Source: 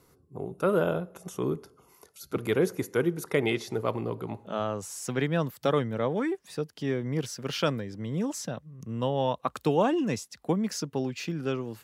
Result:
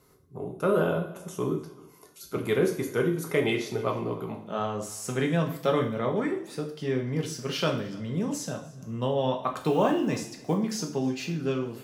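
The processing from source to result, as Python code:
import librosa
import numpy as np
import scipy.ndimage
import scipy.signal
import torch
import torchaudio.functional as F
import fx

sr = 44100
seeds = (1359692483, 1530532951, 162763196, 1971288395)

y = fx.block_float(x, sr, bits=7, at=(9.61, 10.55))
y = y + 10.0 ** (-22.5 / 20.0) * np.pad(y, (int(298 * sr / 1000.0), 0))[:len(y)]
y = fx.rev_double_slope(y, sr, seeds[0], early_s=0.49, late_s=2.2, knee_db=-26, drr_db=1.0)
y = y * librosa.db_to_amplitude(-1.5)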